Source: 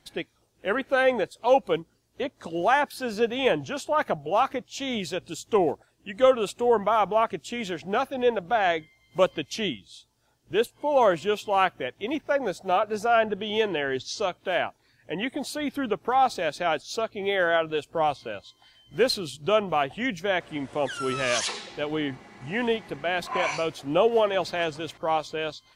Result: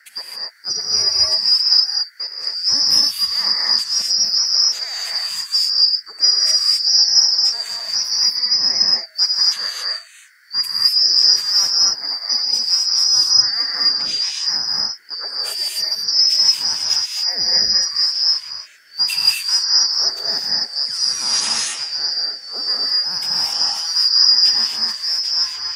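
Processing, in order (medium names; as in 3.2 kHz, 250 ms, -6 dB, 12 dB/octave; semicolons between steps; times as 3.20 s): four frequency bands reordered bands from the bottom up 2341; RIAA curve recording; gated-style reverb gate 290 ms rising, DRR -3.5 dB; band noise 1.4–2.1 kHz -48 dBFS; trim -5 dB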